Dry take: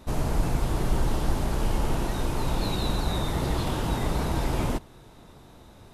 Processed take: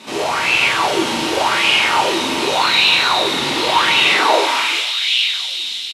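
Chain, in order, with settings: bit crusher 10-bit; on a send: feedback echo behind a high-pass 319 ms, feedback 80%, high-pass 1.6 kHz, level -11 dB; on the sum: high-pass sweep 86 Hz -> 3.4 kHz, 3.90–4.79 s; high-order bell 5.2 kHz +13.5 dB 2.7 oct; doubling 42 ms -4 dB; in parallel at +2 dB: compression, threshold -35 dBFS, peak gain reduction 17 dB; on the sum: band-stop 680 Hz, Q 12; level rider gain up to 3 dB; overdrive pedal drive 14 dB, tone 1.3 kHz, clips at -4 dBFS; frequency weighting A; gated-style reverb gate 270 ms falling, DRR -3 dB; sweeping bell 0.87 Hz 230–2700 Hz +14 dB; trim -3 dB

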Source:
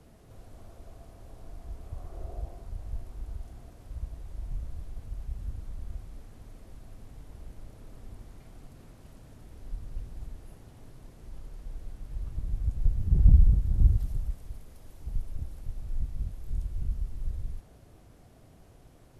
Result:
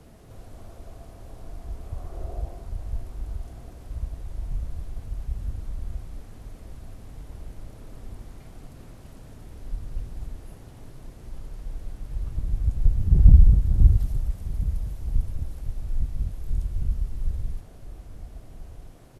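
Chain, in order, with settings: echo from a far wall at 230 m, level -15 dB; trim +5.5 dB

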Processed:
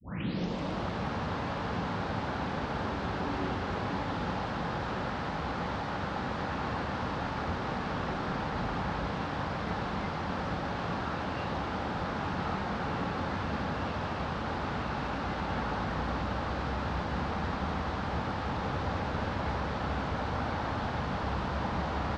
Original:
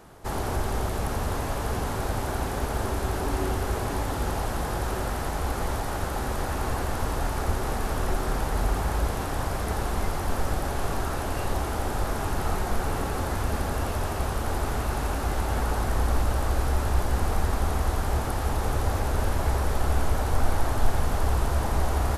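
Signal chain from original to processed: tape start-up on the opening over 0.89 s; cabinet simulation 120–4400 Hz, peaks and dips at 180 Hz +6 dB, 390 Hz -7 dB, 680 Hz -4 dB; trim -1.5 dB

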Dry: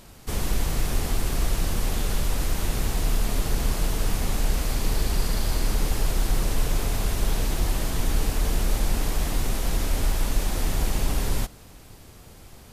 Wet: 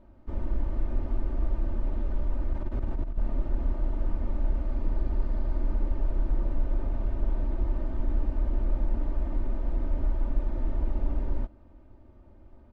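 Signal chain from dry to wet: Bessel low-pass 700 Hz, order 2; comb 3.3 ms, depth 79%; 2.53–3.18 s: compressor with a negative ratio -20 dBFS, ratio -0.5; trim -7 dB

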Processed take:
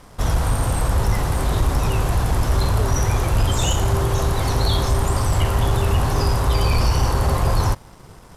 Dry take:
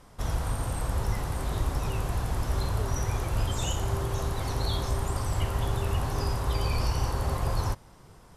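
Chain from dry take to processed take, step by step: waveshaping leveller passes 1; trim +7 dB

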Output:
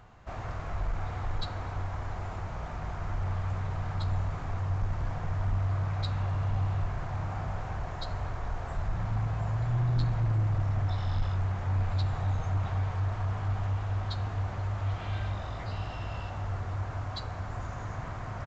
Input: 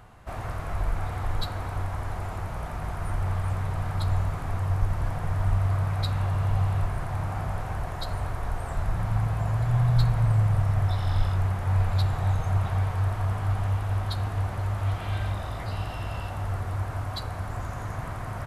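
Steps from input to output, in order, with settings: saturation -17 dBFS, distortion -19 dB; resampled via 16 kHz; trim -3.5 dB

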